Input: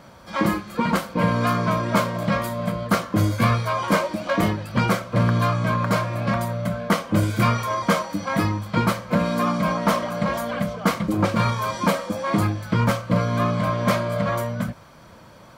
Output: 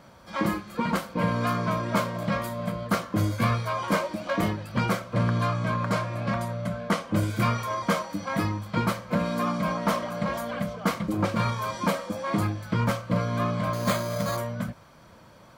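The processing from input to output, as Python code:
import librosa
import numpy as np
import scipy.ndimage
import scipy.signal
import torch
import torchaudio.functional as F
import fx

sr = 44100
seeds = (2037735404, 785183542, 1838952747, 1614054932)

y = fx.lowpass(x, sr, hz=11000.0, slope=12, at=(5.14, 7.16))
y = fx.resample_bad(y, sr, factor=8, down='none', up='hold', at=(13.73, 14.37))
y = F.gain(torch.from_numpy(y), -5.0).numpy()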